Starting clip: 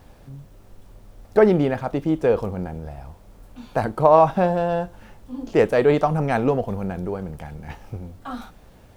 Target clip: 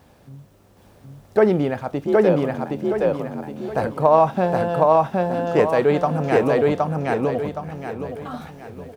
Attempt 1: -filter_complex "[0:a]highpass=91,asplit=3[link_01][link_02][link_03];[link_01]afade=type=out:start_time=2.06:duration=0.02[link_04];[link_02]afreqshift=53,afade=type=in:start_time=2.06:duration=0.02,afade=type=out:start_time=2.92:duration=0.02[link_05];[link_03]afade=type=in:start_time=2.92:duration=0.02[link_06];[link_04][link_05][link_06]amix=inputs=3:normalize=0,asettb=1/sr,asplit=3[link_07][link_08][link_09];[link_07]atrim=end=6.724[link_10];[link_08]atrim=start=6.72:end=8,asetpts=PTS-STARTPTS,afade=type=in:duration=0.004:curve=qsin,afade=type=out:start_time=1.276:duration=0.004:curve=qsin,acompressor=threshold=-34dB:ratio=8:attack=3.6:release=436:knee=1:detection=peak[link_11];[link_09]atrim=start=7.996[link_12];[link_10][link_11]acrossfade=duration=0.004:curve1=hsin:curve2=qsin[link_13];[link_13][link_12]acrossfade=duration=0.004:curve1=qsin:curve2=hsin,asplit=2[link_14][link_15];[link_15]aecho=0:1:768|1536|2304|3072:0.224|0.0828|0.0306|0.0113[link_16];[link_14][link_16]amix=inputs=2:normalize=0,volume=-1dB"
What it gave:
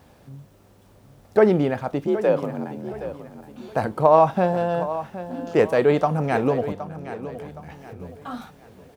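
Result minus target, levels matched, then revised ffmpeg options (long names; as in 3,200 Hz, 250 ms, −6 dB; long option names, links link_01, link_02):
echo-to-direct −12 dB
-filter_complex "[0:a]highpass=91,asplit=3[link_01][link_02][link_03];[link_01]afade=type=out:start_time=2.06:duration=0.02[link_04];[link_02]afreqshift=53,afade=type=in:start_time=2.06:duration=0.02,afade=type=out:start_time=2.92:duration=0.02[link_05];[link_03]afade=type=in:start_time=2.92:duration=0.02[link_06];[link_04][link_05][link_06]amix=inputs=3:normalize=0,asettb=1/sr,asplit=3[link_07][link_08][link_09];[link_07]atrim=end=6.724[link_10];[link_08]atrim=start=6.72:end=8,asetpts=PTS-STARTPTS,afade=type=in:duration=0.004:curve=qsin,afade=type=out:start_time=1.276:duration=0.004:curve=qsin,acompressor=threshold=-34dB:ratio=8:attack=3.6:release=436:knee=1:detection=peak[link_11];[link_09]atrim=start=7.996[link_12];[link_10][link_11]acrossfade=duration=0.004:curve1=hsin:curve2=qsin[link_13];[link_13][link_12]acrossfade=duration=0.004:curve1=qsin:curve2=hsin,asplit=2[link_14][link_15];[link_15]aecho=0:1:768|1536|2304|3072|3840:0.891|0.33|0.122|0.0451|0.0167[link_16];[link_14][link_16]amix=inputs=2:normalize=0,volume=-1dB"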